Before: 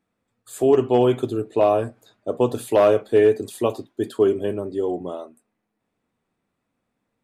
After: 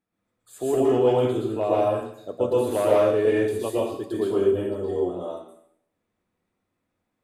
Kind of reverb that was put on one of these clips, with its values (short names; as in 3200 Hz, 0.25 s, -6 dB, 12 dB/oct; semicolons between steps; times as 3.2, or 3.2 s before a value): plate-style reverb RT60 0.67 s, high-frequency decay 1×, pre-delay 0.105 s, DRR -6.5 dB; gain -9 dB